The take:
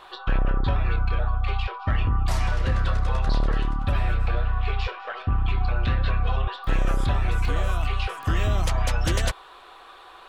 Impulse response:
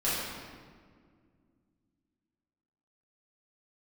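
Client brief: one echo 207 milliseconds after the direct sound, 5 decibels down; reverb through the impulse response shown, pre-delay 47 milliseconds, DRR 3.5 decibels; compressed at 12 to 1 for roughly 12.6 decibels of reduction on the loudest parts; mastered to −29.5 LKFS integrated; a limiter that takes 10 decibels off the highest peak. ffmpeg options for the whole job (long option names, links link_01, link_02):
-filter_complex "[0:a]acompressor=threshold=-31dB:ratio=12,alimiter=level_in=6dB:limit=-24dB:level=0:latency=1,volume=-6dB,aecho=1:1:207:0.562,asplit=2[link_01][link_02];[1:a]atrim=start_sample=2205,adelay=47[link_03];[link_02][link_03]afir=irnorm=-1:irlink=0,volume=-13.5dB[link_04];[link_01][link_04]amix=inputs=2:normalize=0,volume=8.5dB"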